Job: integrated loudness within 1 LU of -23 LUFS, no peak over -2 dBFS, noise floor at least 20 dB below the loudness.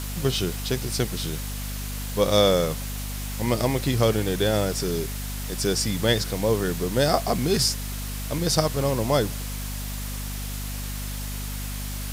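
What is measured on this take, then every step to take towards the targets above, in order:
hum 50 Hz; highest harmonic 250 Hz; hum level -30 dBFS; noise floor -31 dBFS; noise floor target -46 dBFS; loudness -25.5 LUFS; peak level -5.0 dBFS; loudness target -23.0 LUFS
-> hum notches 50/100/150/200/250 Hz; noise reduction 15 dB, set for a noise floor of -31 dBFS; trim +2.5 dB

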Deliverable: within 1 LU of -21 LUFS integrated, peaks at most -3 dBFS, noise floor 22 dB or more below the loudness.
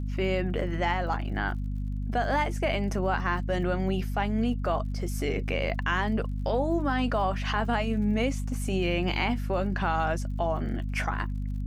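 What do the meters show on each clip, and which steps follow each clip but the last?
tick rate 54 per s; hum 50 Hz; highest harmonic 250 Hz; hum level -28 dBFS; loudness -28.5 LUFS; peak level -13.0 dBFS; loudness target -21.0 LUFS
-> de-click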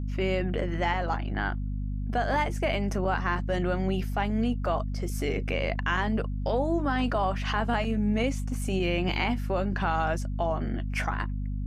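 tick rate 0.086 per s; hum 50 Hz; highest harmonic 250 Hz; hum level -28 dBFS
-> hum notches 50/100/150/200/250 Hz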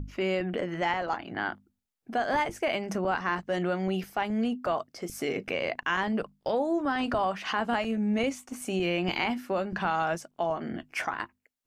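hum not found; loudness -30.0 LUFS; peak level -14.0 dBFS; loudness target -21.0 LUFS
-> trim +9 dB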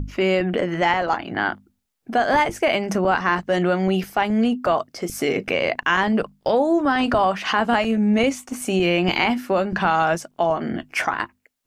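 loudness -21.0 LUFS; peak level -5.0 dBFS; noise floor -69 dBFS

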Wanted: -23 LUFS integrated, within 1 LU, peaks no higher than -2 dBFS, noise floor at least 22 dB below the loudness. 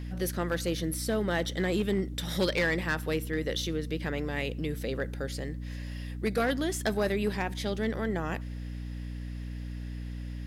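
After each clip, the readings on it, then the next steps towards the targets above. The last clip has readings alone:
clipped samples 0.5%; clipping level -21.0 dBFS; hum 60 Hz; highest harmonic 300 Hz; hum level -35 dBFS; loudness -32.0 LUFS; peak level -21.0 dBFS; loudness target -23.0 LUFS
-> clip repair -21 dBFS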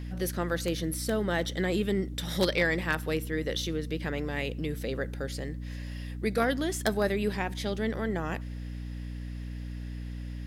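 clipped samples 0.0%; hum 60 Hz; highest harmonic 300 Hz; hum level -35 dBFS
-> de-hum 60 Hz, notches 5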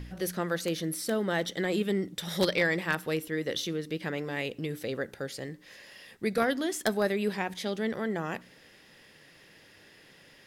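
hum not found; loudness -31.0 LUFS; peak level -11.5 dBFS; loudness target -23.0 LUFS
-> trim +8 dB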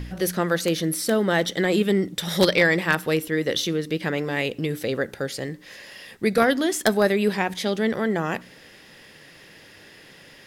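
loudness -23.0 LUFS; peak level -3.5 dBFS; noise floor -49 dBFS

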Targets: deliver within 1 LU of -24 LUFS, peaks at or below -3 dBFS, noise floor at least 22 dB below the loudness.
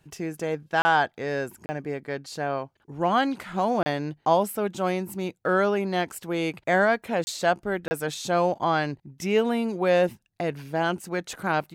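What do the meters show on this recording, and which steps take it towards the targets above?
dropouts 5; longest dropout 30 ms; loudness -26.0 LUFS; peak level -9.0 dBFS; loudness target -24.0 LUFS
-> interpolate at 0.82/1.66/3.83/7.24/7.88 s, 30 ms; trim +2 dB

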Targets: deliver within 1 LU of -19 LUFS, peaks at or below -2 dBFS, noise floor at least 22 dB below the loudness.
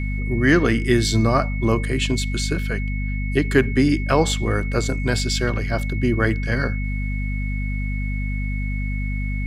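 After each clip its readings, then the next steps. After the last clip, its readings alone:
hum 50 Hz; highest harmonic 250 Hz; hum level -22 dBFS; steady tone 2.2 kHz; tone level -33 dBFS; loudness -22.0 LUFS; peak level -3.0 dBFS; loudness target -19.0 LUFS
-> de-hum 50 Hz, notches 5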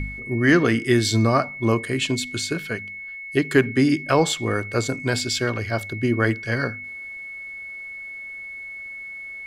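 hum not found; steady tone 2.2 kHz; tone level -33 dBFS
-> band-stop 2.2 kHz, Q 30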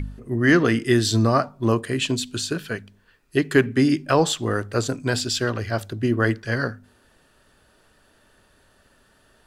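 steady tone not found; loudness -22.0 LUFS; peak level -4.0 dBFS; loudness target -19.0 LUFS
-> trim +3 dB; peak limiter -2 dBFS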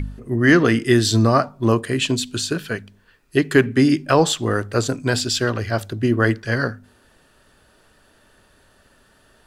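loudness -19.0 LUFS; peak level -2.0 dBFS; noise floor -57 dBFS

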